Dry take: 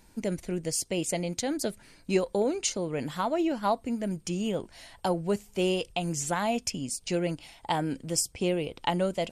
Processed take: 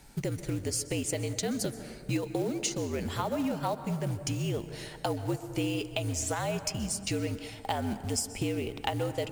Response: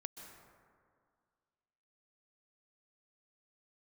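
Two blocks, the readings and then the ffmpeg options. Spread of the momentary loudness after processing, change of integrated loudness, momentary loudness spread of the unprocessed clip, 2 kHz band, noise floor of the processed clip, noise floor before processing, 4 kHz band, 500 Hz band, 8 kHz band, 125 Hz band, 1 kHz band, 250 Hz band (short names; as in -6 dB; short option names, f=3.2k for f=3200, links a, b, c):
4 LU, -2.5 dB, 6 LU, -2.0 dB, -46 dBFS, -58 dBFS, -2.0 dB, -4.5 dB, -1.5 dB, +2.5 dB, -4.5 dB, -3.0 dB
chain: -filter_complex "[0:a]acontrast=45,afreqshift=-62,acrusher=bits=5:mode=log:mix=0:aa=0.000001,acompressor=threshold=-29dB:ratio=3,asplit=2[a][b];[1:a]atrim=start_sample=2205[c];[b][c]afir=irnorm=-1:irlink=0,volume=3dB[d];[a][d]amix=inputs=2:normalize=0,volume=-6.5dB"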